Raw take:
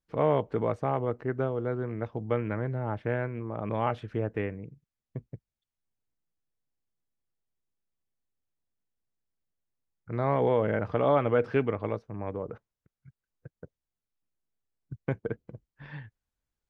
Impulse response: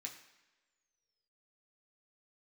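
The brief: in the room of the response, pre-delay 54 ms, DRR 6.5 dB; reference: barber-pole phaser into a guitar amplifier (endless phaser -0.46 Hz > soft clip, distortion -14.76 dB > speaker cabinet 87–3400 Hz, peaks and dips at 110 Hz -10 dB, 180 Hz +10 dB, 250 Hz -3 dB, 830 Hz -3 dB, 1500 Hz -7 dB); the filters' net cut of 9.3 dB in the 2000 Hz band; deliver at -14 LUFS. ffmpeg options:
-filter_complex "[0:a]equalizer=f=2k:t=o:g=-7,asplit=2[a][b];[1:a]atrim=start_sample=2205,adelay=54[c];[b][c]afir=irnorm=-1:irlink=0,volume=-3dB[d];[a][d]amix=inputs=2:normalize=0,asplit=2[e][f];[f]afreqshift=-0.46[g];[e][g]amix=inputs=2:normalize=1,asoftclip=threshold=-24dB,highpass=87,equalizer=f=110:t=q:w=4:g=-10,equalizer=f=180:t=q:w=4:g=10,equalizer=f=250:t=q:w=4:g=-3,equalizer=f=830:t=q:w=4:g=-3,equalizer=f=1.5k:t=q:w=4:g=-7,lowpass=f=3.4k:w=0.5412,lowpass=f=3.4k:w=1.3066,volume=22dB"

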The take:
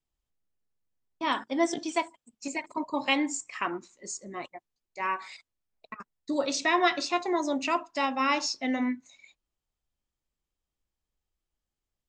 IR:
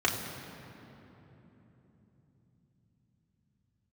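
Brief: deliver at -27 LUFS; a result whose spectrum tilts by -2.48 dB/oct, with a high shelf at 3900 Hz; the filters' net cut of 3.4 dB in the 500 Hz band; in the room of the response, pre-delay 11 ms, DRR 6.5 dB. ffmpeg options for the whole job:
-filter_complex "[0:a]equalizer=f=500:t=o:g=-5,highshelf=f=3.9k:g=-6.5,asplit=2[a][b];[1:a]atrim=start_sample=2205,adelay=11[c];[b][c]afir=irnorm=-1:irlink=0,volume=-18dB[d];[a][d]amix=inputs=2:normalize=0,volume=4dB"

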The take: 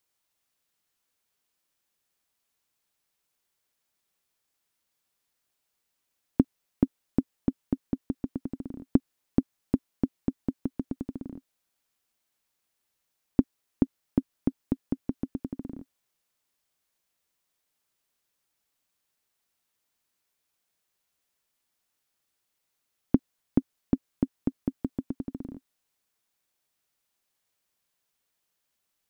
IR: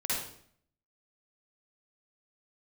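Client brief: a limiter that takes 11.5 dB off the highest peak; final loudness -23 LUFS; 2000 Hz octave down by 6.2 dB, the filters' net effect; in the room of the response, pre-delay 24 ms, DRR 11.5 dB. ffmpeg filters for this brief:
-filter_complex "[0:a]equalizer=f=2k:t=o:g=-8.5,alimiter=limit=-17.5dB:level=0:latency=1,asplit=2[a][b];[1:a]atrim=start_sample=2205,adelay=24[c];[b][c]afir=irnorm=-1:irlink=0,volume=-18dB[d];[a][d]amix=inputs=2:normalize=0,volume=15dB"

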